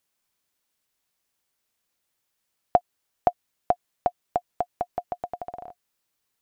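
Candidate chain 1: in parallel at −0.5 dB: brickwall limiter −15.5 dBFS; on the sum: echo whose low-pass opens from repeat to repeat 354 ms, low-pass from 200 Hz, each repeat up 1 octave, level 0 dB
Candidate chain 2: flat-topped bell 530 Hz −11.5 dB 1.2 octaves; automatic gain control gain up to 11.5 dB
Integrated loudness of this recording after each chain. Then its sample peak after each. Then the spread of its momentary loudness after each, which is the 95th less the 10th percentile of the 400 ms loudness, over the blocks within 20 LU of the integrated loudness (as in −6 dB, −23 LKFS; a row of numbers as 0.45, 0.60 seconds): −27.0, −31.5 LKFS; −2.5, −1.5 dBFS; 6, 7 LU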